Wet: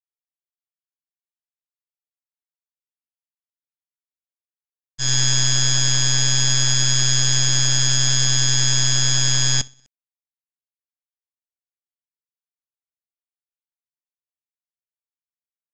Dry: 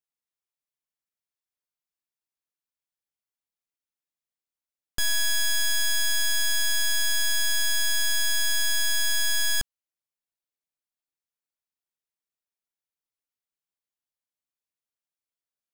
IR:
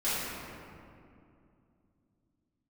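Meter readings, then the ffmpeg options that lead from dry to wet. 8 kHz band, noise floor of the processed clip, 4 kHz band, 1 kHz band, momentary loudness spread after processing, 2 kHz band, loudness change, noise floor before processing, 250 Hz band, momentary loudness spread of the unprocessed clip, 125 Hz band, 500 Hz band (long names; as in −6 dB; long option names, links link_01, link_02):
+9.5 dB, below −85 dBFS, +6.5 dB, +9.0 dB, 2 LU, −1.0 dB, +7.0 dB, below −85 dBFS, +20.5 dB, 3 LU, can't be measured, +7.5 dB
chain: -af "tremolo=f=130:d=0.889,bass=frequency=250:gain=4,treble=frequency=4000:gain=14,aresample=16000,acrusher=bits=4:mix=0:aa=0.000001,aresample=44100,aecho=1:1:62|124|186|248:0.158|0.0697|0.0307|0.0135,agate=range=-33dB:threshold=-13dB:ratio=3:detection=peak,areverse,acompressor=mode=upward:threshold=-47dB:ratio=2.5,areverse,volume=9dB"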